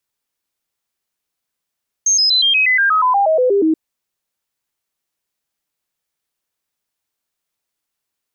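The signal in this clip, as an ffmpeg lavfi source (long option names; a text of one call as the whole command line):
ffmpeg -f lavfi -i "aevalsrc='0.299*clip(min(mod(t,0.12),0.12-mod(t,0.12))/0.005,0,1)*sin(2*PI*6400*pow(2,-floor(t/0.12)/3)*mod(t,0.12))':duration=1.68:sample_rate=44100" out.wav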